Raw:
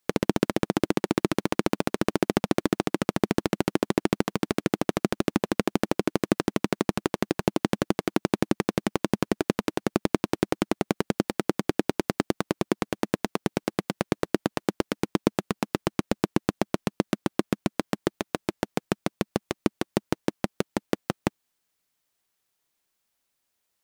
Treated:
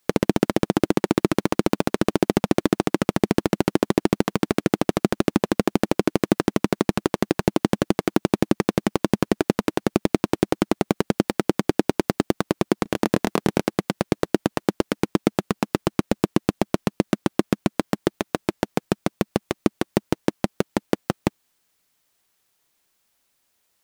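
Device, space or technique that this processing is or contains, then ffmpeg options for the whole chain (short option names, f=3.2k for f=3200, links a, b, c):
clipper into limiter: -filter_complex "[0:a]asettb=1/sr,asplit=3[a][b][c];[a]atrim=end=12.834[d];[b]atrim=start=12.83:end=13.66,asetpts=PTS-STARTPTS,afade=t=in:d=0.004:c=qsin,afade=t=out:st=0.826:d=0.004:c=qsin,asplit=2[e][f];[f]adelay=25,volume=-5dB[g];[e][g]amix=inputs=2:normalize=0,atrim=end_sample=36603[h];[c]atrim=start=13.656[i];[d][h]acrossfade=d=0.004:c1=hsin:c2=qsin[j];[j][i]acrossfade=d=0.004:c1=qsin:c2=hsin,asoftclip=type=hard:threshold=-9.5dB,alimiter=limit=-12.5dB:level=0:latency=1,volume=8dB"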